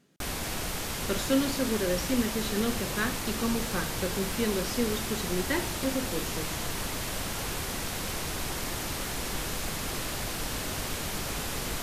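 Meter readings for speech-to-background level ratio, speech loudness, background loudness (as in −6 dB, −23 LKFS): 1.0 dB, −31.5 LKFS, −32.5 LKFS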